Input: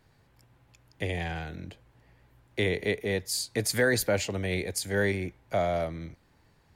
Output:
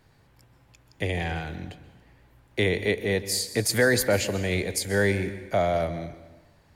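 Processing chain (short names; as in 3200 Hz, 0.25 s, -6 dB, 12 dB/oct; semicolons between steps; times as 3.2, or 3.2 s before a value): plate-style reverb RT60 1.1 s, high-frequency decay 0.9×, pre-delay 0.115 s, DRR 13 dB; gain +3.5 dB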